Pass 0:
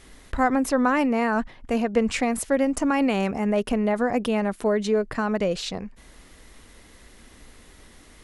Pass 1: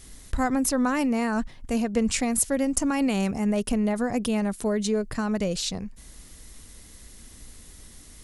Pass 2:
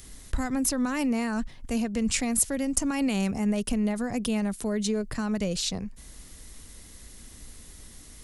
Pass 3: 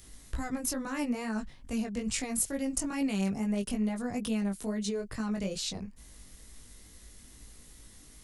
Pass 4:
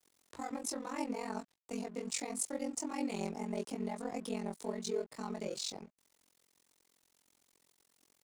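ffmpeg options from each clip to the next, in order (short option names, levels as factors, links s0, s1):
-af "bass=f=250:g=9,treble=f=4000:g=14,volume=0.531"
-filter_complex "[0:a]acrossover=split=230|2000[s0][s1][s2];[s1]alimiter=level_in=1.06:limit=0.0631:level=0:latency=1:release=245,volume=0.944[s3];[s2]acompressor=mode=upward:threshold=0.00224:ratio=2.5[s4];[s0][s3][s4]amix=inputs=3:normalize=0"
-af "flanger=delay=18:depth=2.8:speed=2.3,volume=0.75"
-af "aeval=exprs='val(0)*sin(2*PI*22*n/s)':c=same,highpass=290,equalizer=f=410:t=q:w=4:g=4,equalizer=f=860:t=q:w=4:g=6,equalizer=f=1600:t=q:w=4:g=-9,equalizer=f=2900:t=q:w=4:g=-6,lowpass=f=9500:w=0.5412,lowpass=f=9500:w=1.3066,aeval=exprs='sgn(val(0))*max(abs(val(0))-0.00141,0)':c=same"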